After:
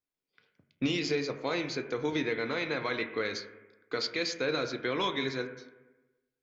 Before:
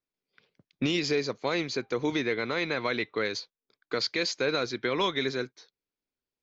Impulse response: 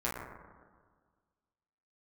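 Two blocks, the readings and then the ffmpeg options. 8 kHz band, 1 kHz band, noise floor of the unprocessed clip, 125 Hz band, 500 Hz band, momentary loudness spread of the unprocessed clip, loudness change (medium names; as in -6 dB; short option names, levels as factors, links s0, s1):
no reading, -2.5 dB, under -85 dBFS, -2.5 dB, -2.5 dB, 6 LU, -3.0 dB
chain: -filter_complex "[0:a]asplit=2[s0][s1];[1:a]atrim=start_sample=2205,asetrate=66150,aresample=44100[s2];[s1][s2]afir=irnorm=-1:irlink=0,volume=0.422[s3];[s0][s3]amix=inputs=2:normalize=0,volume=0.531"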